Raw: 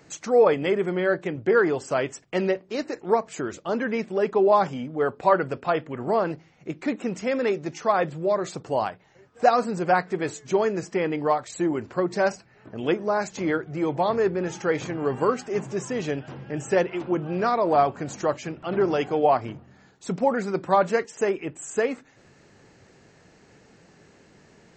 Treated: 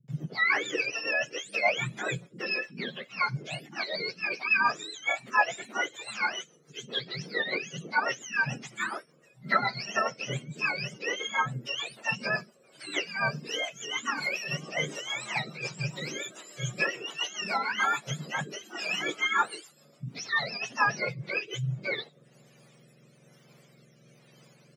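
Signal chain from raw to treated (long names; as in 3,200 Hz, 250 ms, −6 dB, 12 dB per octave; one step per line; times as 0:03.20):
frequency axis turned over on the octave scale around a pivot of 990 Hz
multiband delay without the direct sound lows, highs 80 ms, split 230 Hz
rotating-speaker cabinet horn 7 Hz, later 1.1 Hz, at 0:21.35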